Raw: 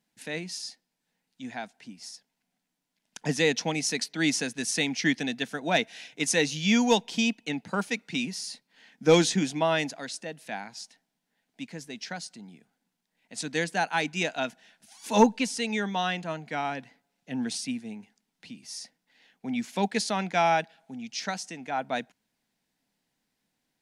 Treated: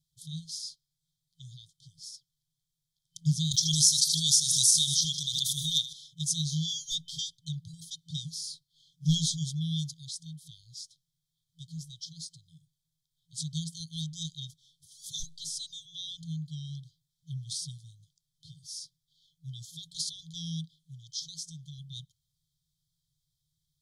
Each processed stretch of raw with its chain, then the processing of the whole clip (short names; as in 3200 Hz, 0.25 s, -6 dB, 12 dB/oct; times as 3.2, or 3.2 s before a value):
3.51–5.93 tilt +3.5 dB/oct + feedback echo 78 ms, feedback 57%, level -15 dB + backwards sustainer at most 28 dB/s
whole clip: FFT band-reject 170–3100 Hz; low shelf 480 Hz +10 dB; gain -1.5 dB